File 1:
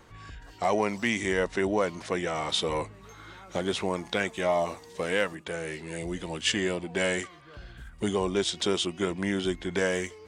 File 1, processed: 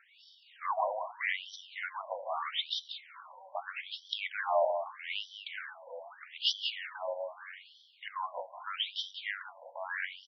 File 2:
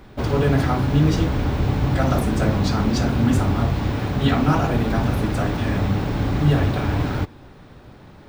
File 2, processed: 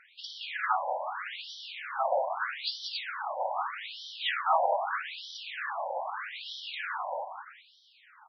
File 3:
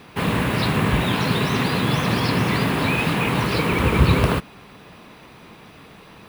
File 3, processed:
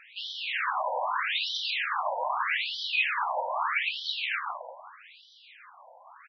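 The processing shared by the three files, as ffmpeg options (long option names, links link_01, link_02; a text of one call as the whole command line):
ffmpeg -i in.wav -af "aecho=1:1:185|370|555|740|925:0.447|0.183|0.0751|0.0308|0.0126,afftfilt=real='re*between(b*sr/1024,700*pow(4300/700,0.5+0.5*sin(2*PI*0.8*pts/sr))/1.41,700*pow(4300/700,0.5+0.5*sin(2*PI*0.8*pts/sr))*1.41)':imag='im*between(b*sr/1024,700*pow(4300/700,0.5+0.5*sin(2*PI*0.8*pts/sr))/1.41,700*pow(4300/700,0.5+0.5*sin(2*PI*0.8*pts/sr))*1.41)':win_size=1024:overlap=0.75" out.wav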